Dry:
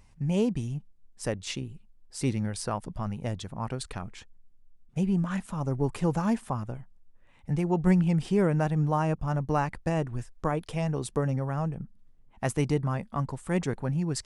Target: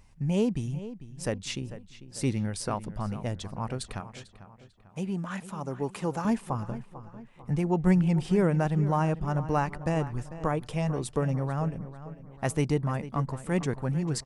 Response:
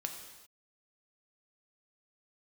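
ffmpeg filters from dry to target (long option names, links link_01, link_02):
-filter_complex "[0:a]asettb=1/sr,asplit=3[link_01][link_02][link_03];[link_01]atrim=end=4.004[link_04];[link_02]atrim=start=4:end=6.25,asetpts=PTS-STARTPTS,afade=type=in:duration=0.004:curve=qsin,afade=type=out:start_time=2.246:duration=0.004:curve=qsin,highpass=frequency=340:poles=1[link_05];[link_03]atrim=start=6.246[link_06];[link_04][link_05]acrossfade=duration=0.004:curve1=hsin:curve2=qsin[link_07];[link_07][link_06]acrossfade=duration=0.004:curve1=qsin:curve2=hsin,asplit=2[link_08][link_09];[link_09]adelay=446,lowpass=frequency=3500:poles=1,volume=-14dB,asplit=2[link_10][link_11];[link_11]adelay=446,lowpass=frequency=3500:poles=1,volume=0.47,asplit=2[link_12][link_13];[link_13]adelay=446,lowpass=frequency=3500:poles=1,volume=0.47,asplit=2[link_14][link_15];[link_15]adelay=446,lowpass=frequency=3500:poles=1,volume=0.47[link_16];[link_08][link_10][link_12][link_14][link_16]amix=inputs=5:normalize=0"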